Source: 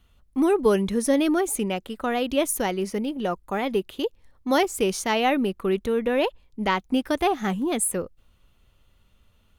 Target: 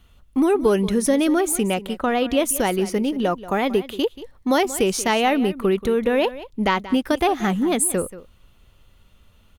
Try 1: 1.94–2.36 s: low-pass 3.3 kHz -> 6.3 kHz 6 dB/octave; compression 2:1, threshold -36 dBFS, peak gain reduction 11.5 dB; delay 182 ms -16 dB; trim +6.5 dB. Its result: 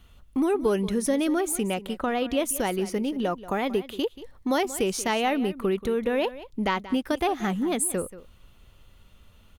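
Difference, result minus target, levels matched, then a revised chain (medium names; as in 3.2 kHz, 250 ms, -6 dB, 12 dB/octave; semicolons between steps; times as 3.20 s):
compression: peak gain reduction +6 dB
1.94–2.36 s: low-pass 3.3 kHz -> 6.3 kHz 6 dB/octave; compression 2:1, threshold -24.5 dBFS, peak gain reduction 6 dB; delay 182 ms -16 dB; trim +6.5 dB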